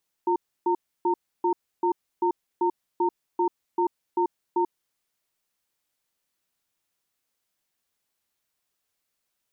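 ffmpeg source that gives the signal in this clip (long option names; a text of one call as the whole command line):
ffmpeg -f lavfi -i "aevalsrc='0.075*(sin(2*PI*352*t)+sin(2*PI*916*t))*clip(min(mod(t,0.39),0.09-mod(t,0.39))/0.005,0,1)':duration=4.59:sample_rate=44100" out.wav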